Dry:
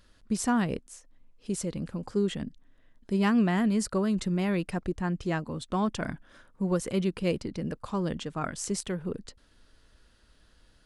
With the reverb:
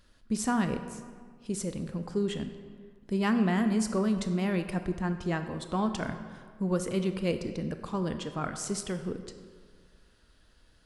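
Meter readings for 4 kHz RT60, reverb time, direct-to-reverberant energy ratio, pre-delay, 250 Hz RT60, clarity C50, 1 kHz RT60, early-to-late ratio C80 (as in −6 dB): 1.1 s, 1.8 s, 8.0 dB, 20 ms, 1.8 s, 9.0 dB, 1.8 s, 10.5 dB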